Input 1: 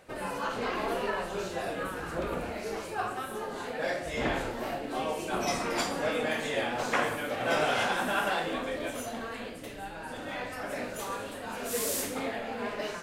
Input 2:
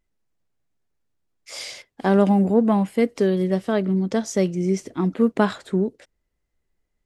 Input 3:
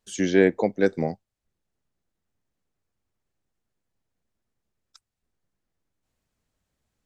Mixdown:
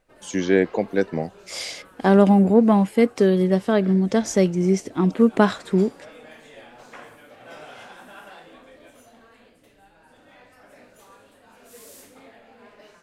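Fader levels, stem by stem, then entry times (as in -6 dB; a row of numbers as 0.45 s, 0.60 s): -14.5 dB, +2.5 dB, 0.0 dB; 0.00 s, 0.00 s, 0.15 s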